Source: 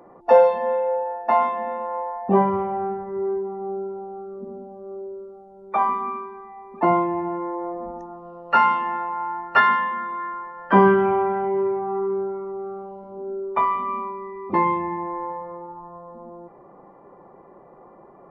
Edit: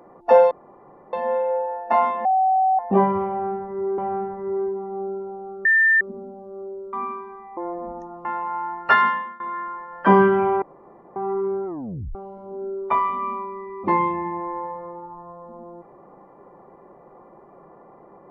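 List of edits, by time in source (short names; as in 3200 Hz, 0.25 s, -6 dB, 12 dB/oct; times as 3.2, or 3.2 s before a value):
0.51 insert room tone 0.62 s
1.63–2.17 bleep 758 Hz -15 dBFS
2.67–3.36 loop, 2 plays
4.34 add tone 1790 Hz -13 dBFS 0.36 s
5.26–5.98 cut
6.62–7.56 cut
8.24–8.91 cut
9.74–10.06 fade out, to -21 dB
11.28–11.82 room tone
12.32 tape stop 0.49 s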